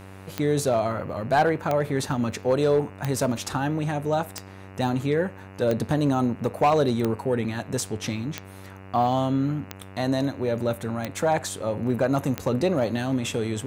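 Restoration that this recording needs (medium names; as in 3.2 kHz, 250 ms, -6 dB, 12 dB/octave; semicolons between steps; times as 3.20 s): clip repair -13.5 dBFS; de-click; de-hum 96 Hz, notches 30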